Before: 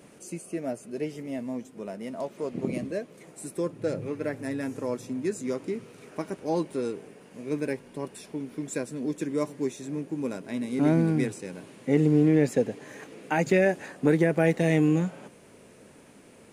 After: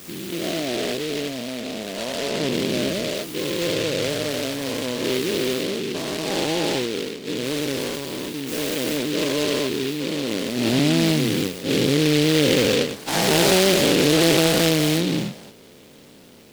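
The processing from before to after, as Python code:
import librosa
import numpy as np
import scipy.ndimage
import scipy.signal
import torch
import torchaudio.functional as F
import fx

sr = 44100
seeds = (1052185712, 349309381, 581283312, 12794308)

y = fx.spec_dilate(x, sr, span_ms=480)
y = fx.noise_mod_delay(y, sr, seeds[0], noise_hz=3000.0, depth_ms=0.17)
y = F.gain(torch.from_numpy(y), -1.0).numpy()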